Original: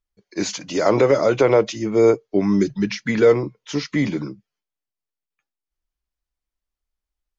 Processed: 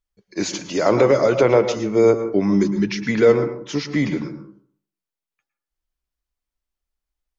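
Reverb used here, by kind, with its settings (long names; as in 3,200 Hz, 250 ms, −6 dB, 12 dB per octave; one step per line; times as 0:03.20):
dense smooth reverb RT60 0.54 s, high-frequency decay 0.35×, pre-delay 100 ms, DRR 9 dB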